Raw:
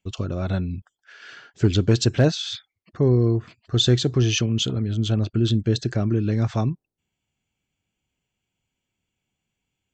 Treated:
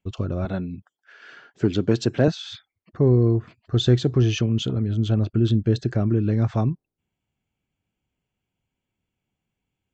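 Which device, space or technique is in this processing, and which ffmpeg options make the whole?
through cloth: -filter_complex "[0:a]highshelf=f=2.8k:g=-12,asettb=1/sr,asplit=3[a][b][c];[a]atrim=end=0.454[d];[b]atrim=start=0.45:end=2.28,asetpts=PTS-STARTPTS,afade=t=in:d=0.004:c=qsin,afade=t=out:st=1.826:d=0.004:c=qsin,highpass=160[e];[c]atrim=start=2.276[f];[d][e]acrossfade=d=0.004:c1=hsin:c2=qsin[g];[g][f]acrossfade=d=0.004:c1=qsin:c2=hsin,volume=1dB"

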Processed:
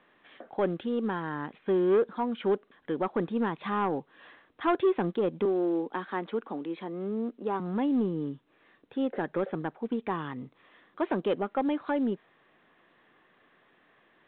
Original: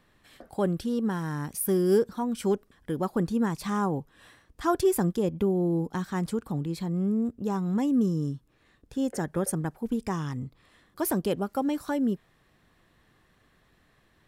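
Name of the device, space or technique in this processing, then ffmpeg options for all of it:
telephone: -filter_complex "[0:a]asettb=1/sr,asplit=3[a][b][c];[a]atrim=end=5.454[d];[b]atrim=start=5.45:end=7.6,asetpts=PTS-STARTPTS,afade=t=in:d=0.004:c=qsin,afade=t=out:st=2.146:d=0.004:c=qsin,highpass=f=220:w=0.5412,highpass=f=220:w=1.3066[e];[c]atrim=start=7.596[f];[d][e]acrossfade=d=0.004:c1=hsin:c2=qsin[g];[g][f]acrossfade=d=0.004:c1=qsin:c2=hsin,highpass=300,lowpass=3.4k,asoftclip=type=tanh:threshold=-21dB,volume=3dB" -ar 8000 -c:a pcm_mulaw

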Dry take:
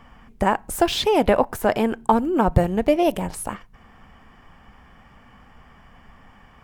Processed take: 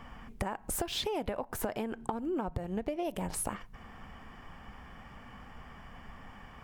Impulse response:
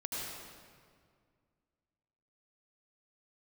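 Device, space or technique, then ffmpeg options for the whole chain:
serial compression, peaks first: -filter_complex "[0:a]acompressor=threshold=-25dB:ratio=10,acompressor=threshold=-32dB:ratio=3,asettb=1/sr,asplit=3[a][b][c];[a]atrim=end=1.844[d];[b]atrim=start=1.84:end=3.05,asetpts=PTS-STARTPTS,afade=t=in:d=0.004:c=qsin,afade=t=out:st=1.206:d=0.004:c=qsin,highshelf=f=8.7k:g=-6[e];[c]atrim=start=3.046[f];[d][e]acrossfade=d=0.004:c1=hsin:c2=qsin[g];[g][f]acrossfade=d=0.004:c1=qsin:c2=hsin"

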